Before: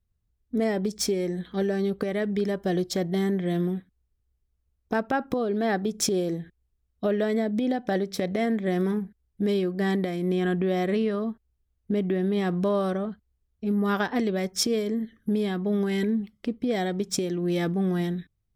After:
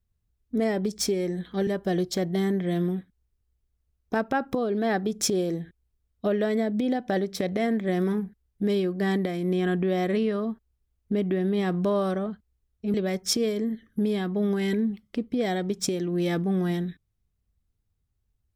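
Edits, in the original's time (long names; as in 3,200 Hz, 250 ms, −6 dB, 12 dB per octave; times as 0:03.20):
0:01.67–0:02.46: remove
0:13.73–0:14.24: remove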